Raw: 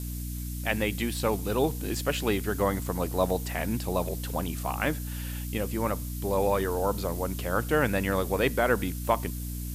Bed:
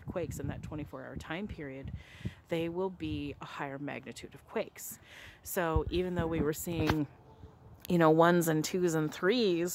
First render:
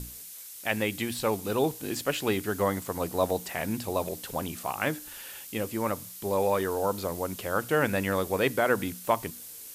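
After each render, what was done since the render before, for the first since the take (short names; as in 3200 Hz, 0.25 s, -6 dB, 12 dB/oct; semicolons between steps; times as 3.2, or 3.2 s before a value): notches 60/120/180/240/300 Hz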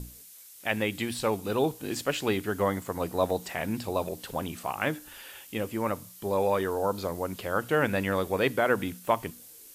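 noise print and reduce 6 dB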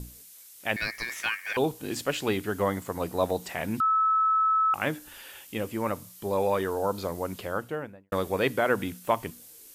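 0.76–1.57 ring modulator 2000 Hz; 3.8–4.74 bleep 1300 Hz -20 dBFS; 7.32–8.12 studio fade out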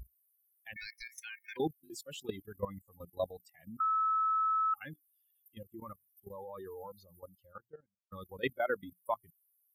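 per-bin expansion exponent 3; level quantiser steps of 15 dB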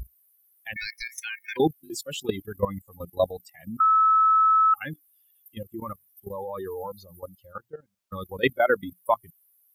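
gain +11.5 dB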